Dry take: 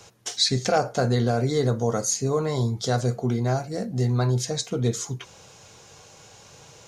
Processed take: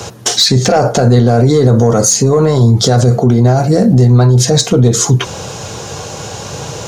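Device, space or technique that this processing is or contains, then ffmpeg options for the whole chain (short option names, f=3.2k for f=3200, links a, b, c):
mastering chain: -af "highpass=f=54:w=0.5412,highpass=f=54:w=1.3066,equalizer=f=2.2k:t=o:w=0.36:g=-4,acompressor=threshold=-28dB:ratio=2,asoftclip=type=tanh:threshold=-18.5dB,tiltshelf=f=970:g=3,alimiter=level_in=25.5dB:limit=-1dB:release=50:level=0:latency=1,volume=-1dB"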